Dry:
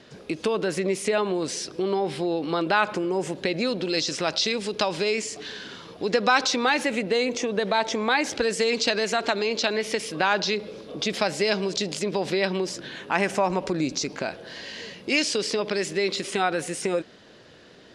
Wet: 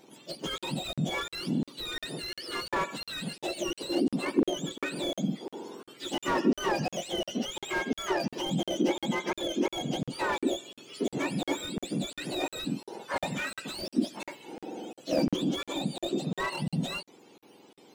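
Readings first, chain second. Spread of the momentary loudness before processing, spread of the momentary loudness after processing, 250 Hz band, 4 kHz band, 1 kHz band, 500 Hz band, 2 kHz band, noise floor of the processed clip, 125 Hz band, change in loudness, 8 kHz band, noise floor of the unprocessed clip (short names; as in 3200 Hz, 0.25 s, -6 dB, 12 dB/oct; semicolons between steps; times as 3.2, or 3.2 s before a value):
9 LU, 10 LU, -1.5 dB, -7.0 dB, -8.0 dB, -9.0 dB, -9.5 dB, under -85 dBFS, -0.5 dB, -7.0 dB, -9.0 dB, -50 dBFS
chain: spectrum mirrored in octaves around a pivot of 1200 Hz; crackling interface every 0.35 s, samples 2048, zero, from 0.58; slew limiter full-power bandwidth 95 Hz; gain -4 dB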